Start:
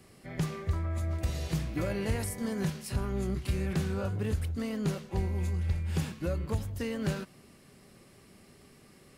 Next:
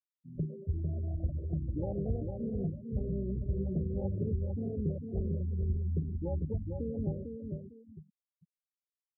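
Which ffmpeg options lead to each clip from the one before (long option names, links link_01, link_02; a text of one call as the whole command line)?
ffmpeg -i in.wav -filter_complex "[0:a]afwtdn=0.02,asplit=2[link_01][link_02];[link_02]aecho=0:1:450|900|1350|1800:0.562|0.174|0.054|0.0168[link_03];[link_01][link_03]amix=inputs=2:normalize=0,afftfilt=real='re*gte(hypot(re,im),0.0251)':imag='im*gte(hypot(re,im),0.0251)':win_size=1024:overlap=0.75,volume=-3dB" out.wav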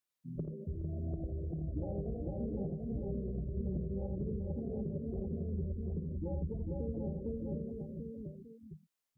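ffmpeg -i in.wav -filter_complex "[0:a]equalizer=frequency=95:width_type=o:width=0.27:gain=-13.5,acompressor=threshold=-42dB:ratio=6,asplit=2[link_01][link_02];[link_02]aecho=0:1:55|83|419|742:0.237|0.501|0.168|0.596[link_03];[link_01][link_03]amix=inputs=2:normalize=0,volume=5dB" out.wav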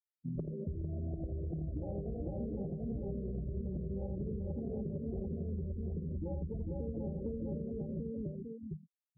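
ffmpeg -i in.wav -af "afftfilt=real='re*gte(hypot(re,im),0.00141)':imag='im*gte(hypot(re,im),0.00141)':win_size=1024:overlap=0.75,acompressor=threshold=-44dB:ratio=6,volume=8.5dB" out.wav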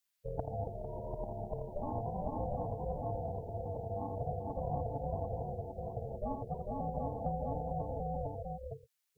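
ffmpeg -i in.wav -af "highpass=410,equalizer=frequency=740:width=0.8:gain=-9,aeval=exprs='val(0)*sin(2*PI*290*n/s)':channel_layout=same,volume=16.5dB" out.wav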